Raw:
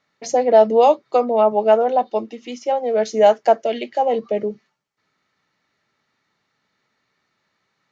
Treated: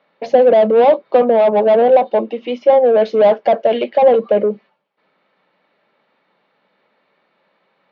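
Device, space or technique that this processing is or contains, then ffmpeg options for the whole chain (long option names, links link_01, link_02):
overdrive pedal into a guitar cabinet: -filter_complex "[0:a]asplit=2[link_01][link_02];[link_02]highpass=frequency=720:poles=1,volume=25dB,asoftclip=type=tanh:threshold=-2dB[link_03];[link_01][link_03]amix=inputs=2:normalize=0,lowpass=frequency=1500:poles=1,volume=-6dB,highpass=110,equalizer=frequency=110:width_type=q:width=4:gain=-8,equalizer=frequency=190:width_type=q:width=4:gain=6,equalizer=frequency=540:width_type=q:width=4:gain=8,equalizer=frequency=1300:width_type=q:width=4:gain=-6,equalizer=frequency=1900:width_type=q:width=4:gain=-7,lowpass=frequency=3700:width=0.5412,lowpass=frequency=3700:width=1.3066,volume=-4dB"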